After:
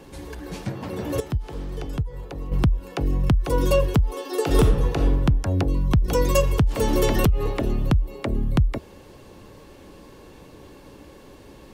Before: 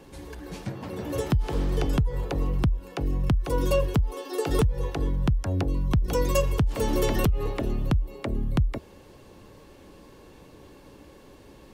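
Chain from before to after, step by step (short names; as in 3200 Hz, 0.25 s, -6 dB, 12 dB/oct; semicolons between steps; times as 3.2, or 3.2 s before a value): 1.2–2.52 gate -19 dBFS, range -10 dB; 4.43–5.15 reverb throw, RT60 1 s, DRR 3.5 dB; gain +4 dB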